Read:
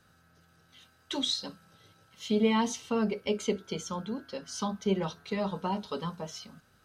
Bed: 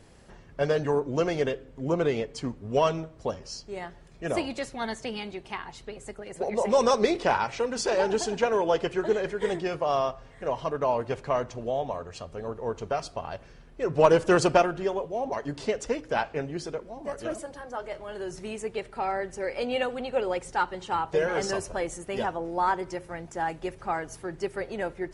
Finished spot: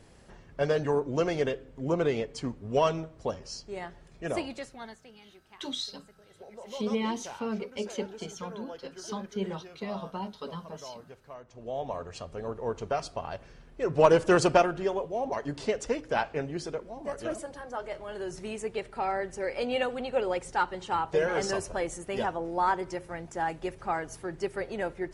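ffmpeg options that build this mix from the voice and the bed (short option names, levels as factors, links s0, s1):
-filter_complex "[0:a]adelay=4500,volume=0.596[s0];[1:a]volume=6.68,afade=t=out:st=4.16:d=0.87:silence=0.133352,afade=t=in:st=11.46:d=0.55:silence=0.125893[s1];[s0][s1]amix=inputs=2:normalize=0"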